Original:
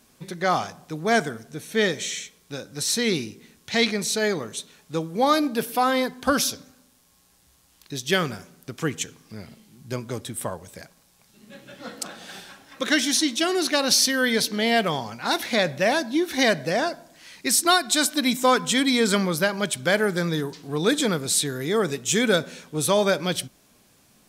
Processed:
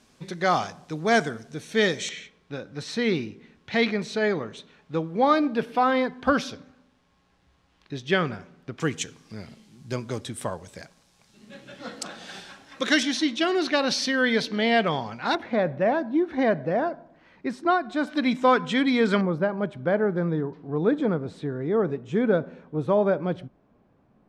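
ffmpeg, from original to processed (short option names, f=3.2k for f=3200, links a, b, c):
-af "asetnsamples=n=441:p=0,asendcmd='2.09 lowpass f 2600;8.8 lowpass f 7000;13.03 lowpass f 3300;15.35 lowpass f 1200;18.07 lowpass f 2400;19.21 lowpass f 1000',lowpass=6.7k"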